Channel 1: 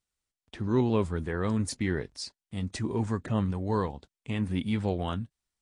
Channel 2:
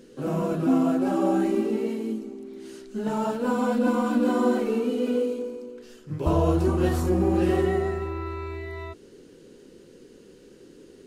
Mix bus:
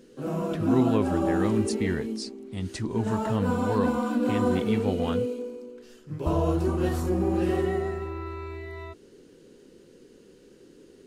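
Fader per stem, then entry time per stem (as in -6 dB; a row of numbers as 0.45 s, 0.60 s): +0.5 dB, -3.0 dB; 0.00 s, 0.00 s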